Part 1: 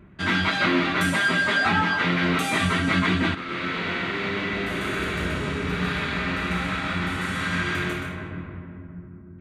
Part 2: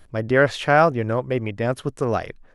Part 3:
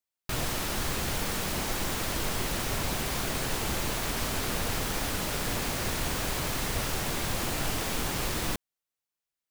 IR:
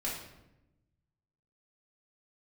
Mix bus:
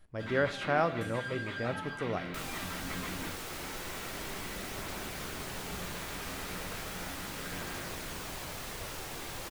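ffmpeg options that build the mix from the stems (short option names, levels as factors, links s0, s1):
-filter_complex "[0:a]aeval=exprs='sgn(val(0))*max(abs(val(0))-0.00422,0)':c=same,volume=0.119[s0];[1:a]volume=0.2,asplit=2[s1][s2];[s2]volume=0.211[s3];[2:a]flanger=delay=0:depth=2.6:regen=-72:speed=0.35:shape=triangular,bass=f=250:g=-5,treble=f=4000:g=-1,adelay=2050,volume=0.596[s4];[3:a]atrim=start_sample=2205[s5];[s3][s5]afir=irnorm=-1:irlink=0[s6];[s0][s1][s4][s6]amix=inputs=4:normalize=0"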